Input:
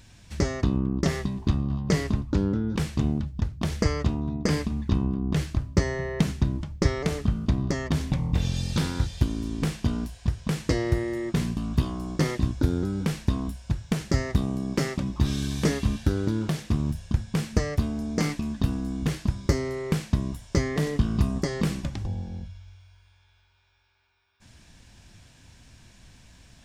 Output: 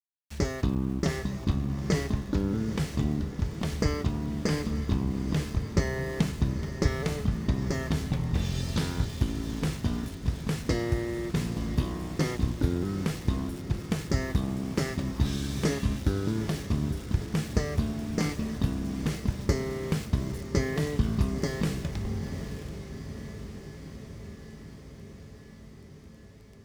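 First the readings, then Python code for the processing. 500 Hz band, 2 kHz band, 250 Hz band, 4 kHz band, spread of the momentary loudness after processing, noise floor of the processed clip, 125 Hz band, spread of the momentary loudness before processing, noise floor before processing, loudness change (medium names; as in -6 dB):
-2.0 dB, -2.0 dB, -2.5 dB, -2.0 dB, 14 LU, -48 dBFS, -2.5 dB, 4 LU, -58 dBFS, -2.5 dB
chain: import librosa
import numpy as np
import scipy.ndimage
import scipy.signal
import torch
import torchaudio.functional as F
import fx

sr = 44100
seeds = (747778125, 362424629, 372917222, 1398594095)

y = fx.comb_fb(x, sr, f0_hz=430.0, decay_s=0.45, harmonics='all', damping=0.0, mix_pct=60)
y = np.where(np.abs(y) >= 10.0 ** (-48.0 / 20.0), y, 0.0)
y = fx.echo_diffused(y, sr, ms=888, feedback_pct=70, wet_db=-11.0)
y = F.gain(torch.from_numpy(y), 4.5).numpy()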